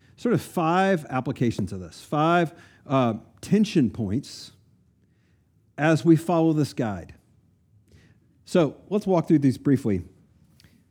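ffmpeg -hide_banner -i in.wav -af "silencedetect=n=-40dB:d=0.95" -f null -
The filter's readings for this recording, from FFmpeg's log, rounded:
silence_start: 4.49
silence_end: 5.78 | silence_duration: 1.29
silence_start: 7.11
silence_end: 8.48 | silence_duration: 1.37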